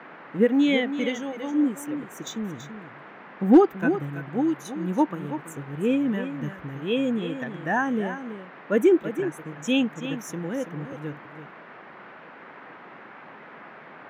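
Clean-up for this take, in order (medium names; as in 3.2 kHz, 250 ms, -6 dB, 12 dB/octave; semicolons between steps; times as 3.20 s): clip repair -7 dBFS; noise print and reduce 25 dB; inverse comb 331 ms -10.5 dB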